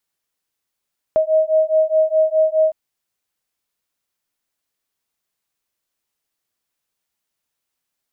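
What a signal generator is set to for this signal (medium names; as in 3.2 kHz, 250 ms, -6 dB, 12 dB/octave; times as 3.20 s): beating tones 628 Hz, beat 4.8 Hz, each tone -16 dBFS 1.56 s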